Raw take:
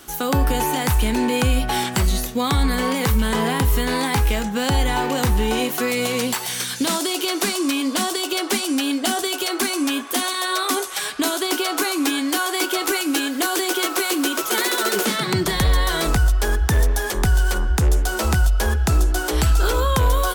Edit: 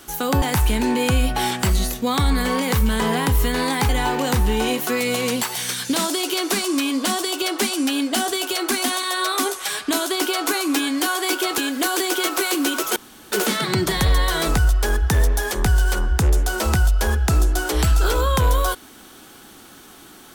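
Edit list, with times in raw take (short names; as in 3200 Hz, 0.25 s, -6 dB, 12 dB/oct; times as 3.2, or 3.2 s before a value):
0.42–0.75 cut
4.22–4.8 cut
9.75–10.15 cut
12.89–13.17 cut
14.55–14.91 room tone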